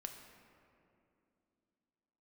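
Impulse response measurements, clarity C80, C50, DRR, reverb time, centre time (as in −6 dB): 7.0 dB, 6.0 dB, 4.0 dB, 2.7 s, 45 ms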